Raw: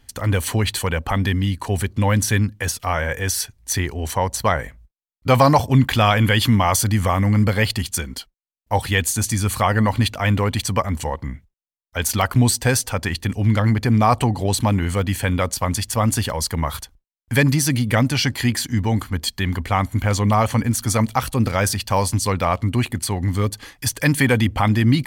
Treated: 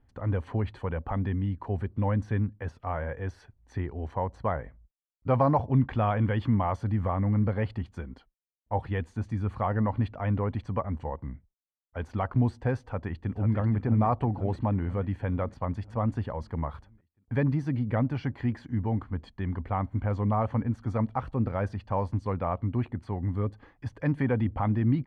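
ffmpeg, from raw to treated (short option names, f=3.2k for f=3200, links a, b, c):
-filter_complex "[0:a]asplit=2[a][b];[b]afade=t=in:st=12.84:d=0.01,afade=t=out:st=13.57:d=0.01,aecho=0:1:490|980|1470|1960|2450|2940|3430|3920:0.421697|0.253018|0.151811|0.0910864|0.0546519|0.0327911|0.0196747|0.0118048[c];[a][c]amix=inputs=2:normalize=0,lowpass=1.1k,volume=-8.5dB"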